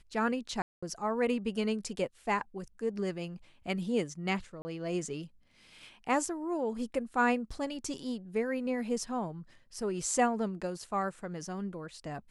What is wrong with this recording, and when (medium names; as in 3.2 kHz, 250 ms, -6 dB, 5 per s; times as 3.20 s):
0.62–0.82 s: dropout 205 ms
4.62–4.65 s: dropout 30 ms